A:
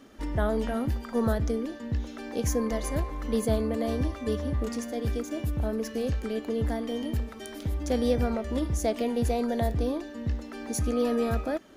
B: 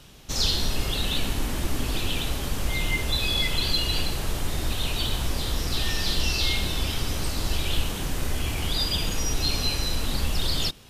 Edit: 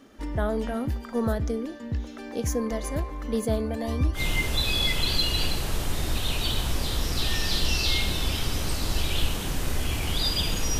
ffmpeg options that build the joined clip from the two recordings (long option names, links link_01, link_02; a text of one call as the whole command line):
ffmpeg -i cue0.wav -i cue1.wav -filter_complex "[0:a]asplit=3[link_01][link_02][link_03];[link_01]afade=type=out:start_time=3.65:duration=0.02[link_04];[link_02]aphaser=in_gain=1:out_gain=1:delay=3.5:decay=0.57:speed=0.22:type=triangular,afade=type=in:start_time=3.65:duration=0.02,afade=type=out:start_time=4.21:duration=0.02[link_05];[link_03]afade=type=in:start_time=4.21:duration=0.02[link_06];[link_04][link_05][link_06]amix=inputs=3:normalize=0,apad=whole_dur=10.79,atrim=end=10.79,atrim=end=4.21,asetpts=PTS-STARTPTS[link_07];[1:a]atrim=start=2.68:end=9.34,asetpts=PTS-STARTPTS[link_08];[link_07][link_08]acrossfade=duration=0.08:curve1=tri:curve2=tri" out.wav